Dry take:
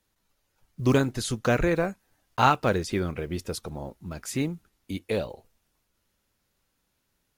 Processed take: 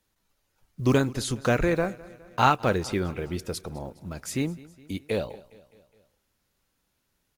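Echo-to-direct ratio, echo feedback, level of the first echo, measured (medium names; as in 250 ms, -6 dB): -19.5 dB, 56%, -21.0 dB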